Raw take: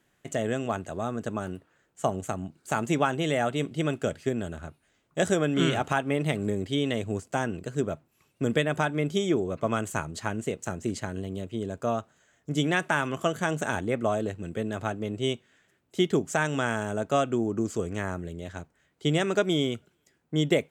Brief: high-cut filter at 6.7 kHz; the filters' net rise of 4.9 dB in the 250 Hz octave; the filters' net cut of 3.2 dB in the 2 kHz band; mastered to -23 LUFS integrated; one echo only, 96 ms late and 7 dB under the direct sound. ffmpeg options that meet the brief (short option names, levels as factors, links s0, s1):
-af "lowpass=6700,equalizer=f=250:t=o:g=6.5,equalizer=f=2000:t=o:g=-4.5,aecho=1:1:96:0.447,volume=1.41"